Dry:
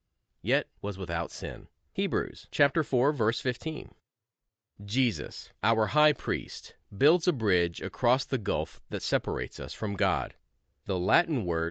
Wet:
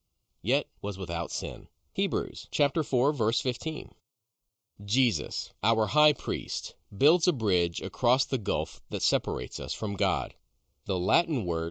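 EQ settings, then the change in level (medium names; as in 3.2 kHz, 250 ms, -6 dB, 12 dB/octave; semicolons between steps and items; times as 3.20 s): Butterworth band-stop 1.7 kHz, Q 1.6; treble shelf 3.9 kHz +11.5 dB; 0.0 dB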